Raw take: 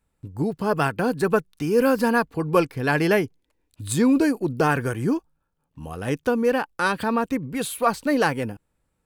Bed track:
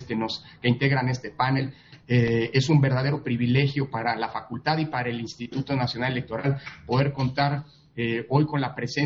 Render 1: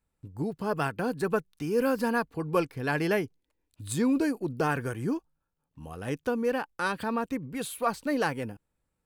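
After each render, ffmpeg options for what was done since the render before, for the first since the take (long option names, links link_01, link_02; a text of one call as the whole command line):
ffmpeg -i in.wav -af "volume=-7dB" out.wav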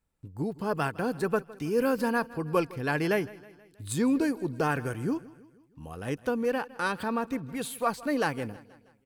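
ffmpeg -i in.wav -af "aecho=1:1:160|320|480|640:0.1|0.053|0.0281|0.0149" out.wav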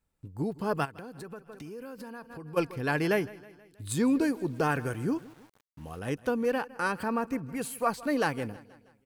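ffmpeg -i in.wav -filter_complex "[0:a]asplit=3[link_01][link_02][link_03];[link_01]afade=type=out:start_time=0.84:duration=0.02[link_04];[link_02]acompressor=threshold=-40dB:ratio=6:attack=3.2:release=140:knee=1:detection=peak,afade=type=in:start_time=0.84:duration=0.02,afade=type=out:start_time=2.56:duration=0.02[link_05];[link_03]afade=type=in:start_time=2.56:duration=0.02[link_06];[link_04][link_05][link_06]amix=inputs=3:normalize=0,asettb=1/sr,asplit=3[link_07][link_08][link_09];[link_07]atrim=end=4.264[link_10];[link_08]atrim=start=4.26:end=5.99,asetpts=PTS-STARTPTS,afade=type=in:duration=0.004:curve=qsin,afade=type=out:start_time=1.726:duration=0.004:curve=qsin,aeval=exprs='val(0)*gte(abs(val(0)),0.00237)':channel_layout=same[link_11];[link_09]atrim=start=5.986[link_12];[link_10][link_11]acrossfade=duration=0.004:curve1=hsin:curve2=qsin[link_13];[link_13][link_12]acrossfade=duration=0.004:curve1=qsin:curve2=hsin,asettb=1/sr,asplit=3[link_14][link_15][link_16];[link_14]atrim=end=6.654[link_17];[link_15]atrim=start=6.65:end=7.92,asetpts=PTS-STARTPTS,afade=type=in:duration=0.004:curve=qsin,afade=type=out:start_time=1.266:duration=0.004:curve=qsin,equalizer=frequency=3600:width_type=o:width=0.25:gain=-15[link_18];[link_16]atrim=start=7.916[link_19];[link_17][link_18]acrossfade=duration=0.004:curve1=hsin:curve2=qsin[link_20];[link_20][link_19]acrossfade=duration=0.004:curve1=qsin:curve2=hsin" out.wav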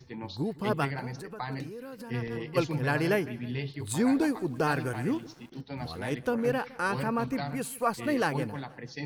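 ffmpeg -i in.wav -i bed.wav -filter_complex "[1:a]volume=-13dB[link_01];[0:a][link_01]amix=inputs=2:normalize=0" out.wav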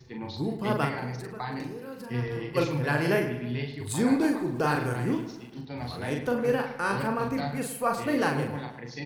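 ffmpeg -i in.wav -filter_complex "[0:a]asplit=2[link_01][link_02];[link_02]adelay=41,volume=-4dB[link_03];[link_01][link_03]amix=inputs=2:normalize=0,asplit=2[link_04][link_05];[link_05]adelay=105,lowpass=frequency=3000:poles=1,volume=-10.5dB,asplit=2[link_06][link_07];[link_07]adelay=105,lowpass=frequency=3000:poles=1,volume=0.48,asplit=2[link_08][link_09];[link_09]adelay=105,lowpass=frequency=3000:poles=1,volume=0.48,asplit=2[link_10][link_11];[link_11]adelay=105,lowpass=frequency=3000:poles=1,volume=0.48,asplit=2[link_12][link_13];[link_13]adelay=105,lowpass=frequency=3000:poles=1,volume=0.48[link_14];[link_04][link_06][link_08][link_10][link_12][link_14]amix=inputs=6:normalize=0" out.wav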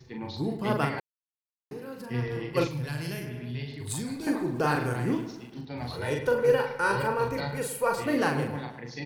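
ffmpeg -i in.wav -filter_complex "[0:a]asettb=1/sr,asplit=3[link_01][link_02][link_03];[link_01]atrim=end=2.674[link_04];[link_02]atrim=start=2.67:end=4.27,asetpts=PTS-STARTPTS,afade=type=in:duration=0.004:curve=qsin,afade=type=out:start_time=1.596:duration=0.004:curve=qsin,acrossover=split=160|3000[link_05][link_06][link_07];[link_06]acompressor=threshold=-39dB:ratio=6:attack=3.2:release=140:knee=2.83:detection=peak[link_08];[link_05][link_08][link_07]amix=inputs=3:normalize=0[link_09];[link_03]atrim=start=4.266[link_10];[link_04][link_09]acrossfade=duration=0.004:curve1=hsin:curve2=qsin[link_11];[link_11][link_10]acrossfade=duration=0.004:curve1=qsin:curve2=hsin,asettb=1/sr,asplit=3[link_12][link_13][link_14];[link_12]atrim=end=5.934[link_15];[link_13]atrim=start=5.93:end=8.02,asetpts=PTS-STARTPTS,afade=type=in:duration=0.004:curve=qsin,afade=type=out:start_time=2.086:duration=0.004:curve=qsin,aecho=1:1:2.1:0.64,atrim=end_sample=92169[link_16];[link_14]atrim=start=8.016[link_17];[link_15][link_16]acrossfade=duration=0.004:curve1=hsin:curve2=qsin[link_18];[link_18][link_17]acrossfade=duration=0.004:curve1=qsin:curve2=hsin,asplit=3[link_19][link_20][link_21];[link_19]atrim=end=1,asetpts=PTS-STARTPTS,afade=type=out:start_time=0.996:duration=0.004:curve=hsin[link_22];[link_20]atrim=start=1:end=1.71,asetpts=PTS-STARTPTS,volume=0[link_23];[link_21]atrim=start=1.71,asetpts=PTS-STARTPTS,afade=type=in:duration=0.004:curve=hsin[link_24];[link_22][link_23][link_24]concat=n=3:v=0:a=1" out.wav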